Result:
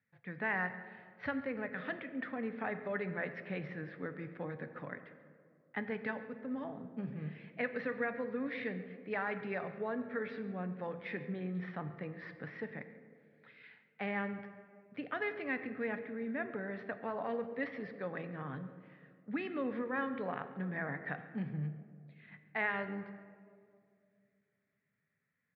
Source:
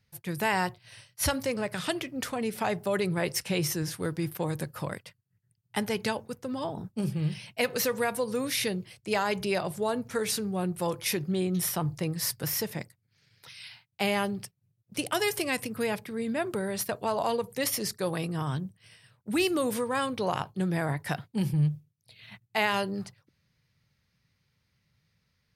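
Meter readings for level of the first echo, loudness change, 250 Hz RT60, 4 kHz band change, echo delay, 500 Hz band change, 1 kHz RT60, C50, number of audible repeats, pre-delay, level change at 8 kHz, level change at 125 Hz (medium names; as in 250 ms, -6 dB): -19.5 dB, -9.5 dB, 2.8 s, -23.5 dB, 138 ms, -9.5 dB, 2.0 s, 10.5 dB, 1, 5 ms, under -40 dB, -12.0 dB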